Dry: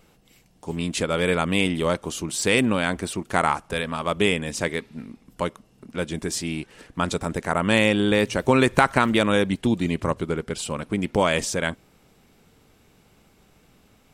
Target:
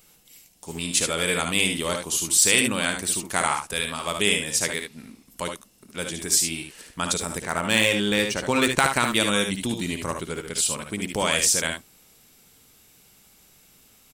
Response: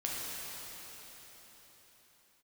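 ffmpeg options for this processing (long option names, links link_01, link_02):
-filter_complex "[0:a]aecho=1:1:58|73:0.335|0.473,asettb=1/sr,asplit=3[link_01][link_02][link_03];[link_01]atrim=end=7.424[link_04];[link_02]atrim=start=7.42:end=8.81,asetpts=PTS-STARTPTS,afade=type=in:duration=0.004:curve=qsin,afade=type=out:start_time=1.386:duration=0.004:curve=qsin,adynamicsmooth=sensitivity=2:basefreq=6200[link_05];[link_03]atrim=start=8.806[link_06];[link_04][link_05]acrossfade=duration=0.004:curve1=hsin:curve2=qsin[link_07];[link_07][link_06]acrossfade=duration=0.004:curve1=qsin:curve2=hsin,crystalizer=i=6:c=0,volume=-7dB"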